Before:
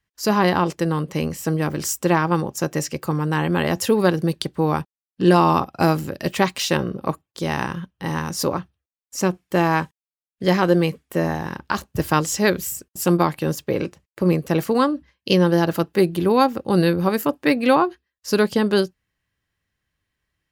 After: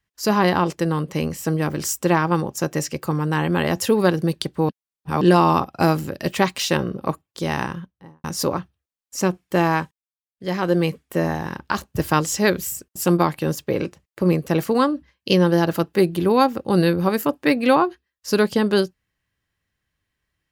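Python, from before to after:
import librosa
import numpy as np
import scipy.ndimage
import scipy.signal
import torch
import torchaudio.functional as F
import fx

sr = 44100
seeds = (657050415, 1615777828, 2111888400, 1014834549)

y = fx.studio_fade_out(x, sr, start_s=7.56, length_s=0.68)
y = fx.edit(y, sr, fx.reverse_span(start_s=4.69, length_s=0.52),
    fx.fade_down_up(start_s=9.68, length_s=1.21, db=-10.5, fade_s=0.48), tone=tone)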